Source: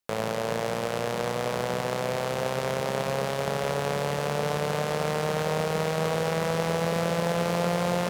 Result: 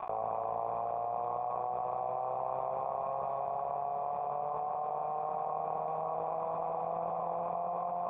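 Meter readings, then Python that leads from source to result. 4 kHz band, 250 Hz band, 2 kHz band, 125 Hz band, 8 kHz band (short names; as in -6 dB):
under -35 dB, -21.5 dB, under -25 dB, -21.5 dB, under -40 dB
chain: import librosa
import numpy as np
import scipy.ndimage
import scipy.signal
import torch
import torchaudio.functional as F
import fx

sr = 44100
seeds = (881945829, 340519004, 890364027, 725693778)

y = fx.high_shelf(x, sr, hz=2800.0, db=9.5)
y = fx.tube_stage(y, sr, drive_db=16.0, bias=0.65)
y = fx.chorus_voices(y, sr, voices=4, hz=0.82, base_ms=17, depth_ms=1.7, mix_pct=20)
y = fx.dmg_crackle(y, sr, seeds[0], per_s=160.0, level_db=-45.0)
y = fx.formant_cascade(y, sr, vowel='a')
y = fx.env_flatten(y, sr, amount_pct=100)
y = y * librosa.db_to_amplitude(5.5)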